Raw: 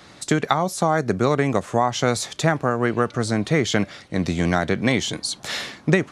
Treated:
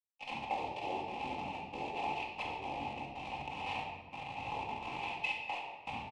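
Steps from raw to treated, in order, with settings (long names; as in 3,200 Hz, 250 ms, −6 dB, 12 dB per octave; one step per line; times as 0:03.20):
hold until the input has moved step −18 dBFS
harmonic and percussive parts rebalanced percussive −15 dB
downward compressor 3 to 1, threshold −32 dBFS, peak gain reduction 12 dB
pitch-shifted copies added −4 semitones 0 dB, +3 semitones −4 dB
pair of resonant band-passes 2,500 Hz, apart 1.6 octaves
pitch shifter −9 semitones
rectangular room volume 910 cubic metres, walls mixed, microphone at 2.1 metres
level +5.5 dB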